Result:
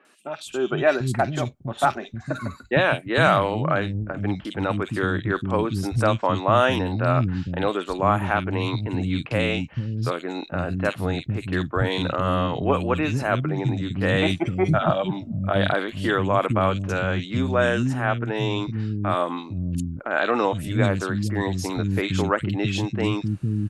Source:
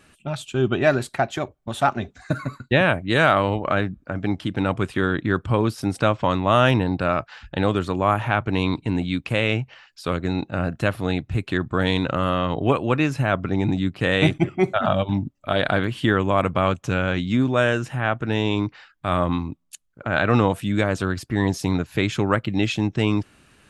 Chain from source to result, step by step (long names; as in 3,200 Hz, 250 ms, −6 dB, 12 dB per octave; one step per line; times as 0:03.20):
three-band delay without the direct sound mids, highs, lows 50/460 ms, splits 260/2,500 Hz